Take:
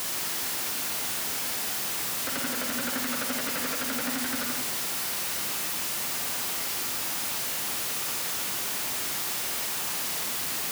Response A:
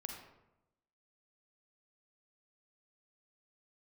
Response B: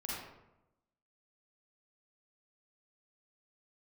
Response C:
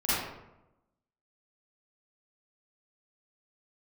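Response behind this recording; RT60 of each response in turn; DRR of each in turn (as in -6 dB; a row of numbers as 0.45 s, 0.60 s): A; 0.95 s, 0.95 s, 0.95 s; 2.0 dB, -6.5 dB, -13.0 dB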